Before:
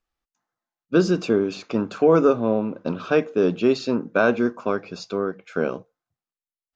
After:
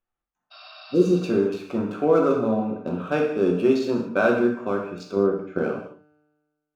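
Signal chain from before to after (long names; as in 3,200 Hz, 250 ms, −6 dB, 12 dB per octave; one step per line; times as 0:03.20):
adaptive Wiener filter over 9 samples
0:00.54–0:01.17: healed spectral selection 590–5,600 Hz after
0:05.16–0:05.58: tilt shelving filter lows +7 dB, about 1,100 Hz
tuned comb filter 150 Hz, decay 1.5 s, mix 40%
reverb whose tail is shaped and stops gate 250 ms falling, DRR 0 dB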